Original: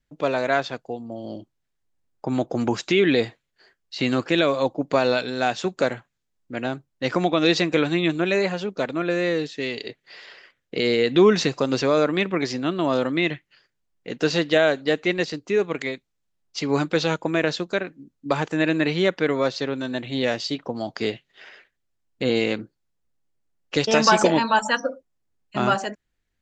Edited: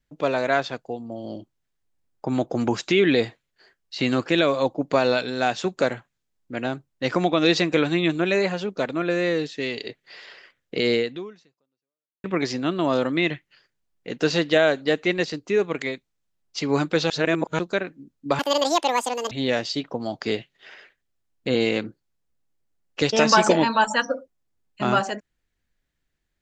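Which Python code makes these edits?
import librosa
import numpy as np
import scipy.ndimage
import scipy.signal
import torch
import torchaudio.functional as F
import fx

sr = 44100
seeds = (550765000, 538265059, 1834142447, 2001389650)

y = fx.edit(x, sr, fx.fade_out_span(start_s=10.97, length_s=1.27, curve='exp'),
    fx.reverse_span(start_s=17.1, length_s=0.49),
    fx.speed_span(start_s=18.39, length_s=1.67, speed=1.81), tone=tone)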